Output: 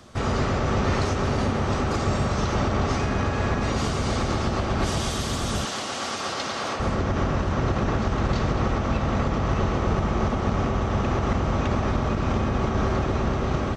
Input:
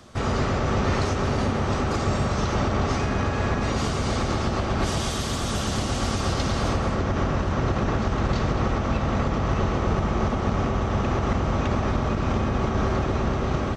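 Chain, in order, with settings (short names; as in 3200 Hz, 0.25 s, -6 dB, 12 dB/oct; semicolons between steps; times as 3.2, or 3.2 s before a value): 5.65–6.8 weighting filter A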